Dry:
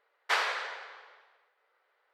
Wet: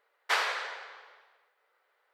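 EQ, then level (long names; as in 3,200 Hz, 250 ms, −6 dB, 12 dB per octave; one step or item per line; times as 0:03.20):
high-shelf EQ 8,000 Hz +5.5 dB
0.0 dB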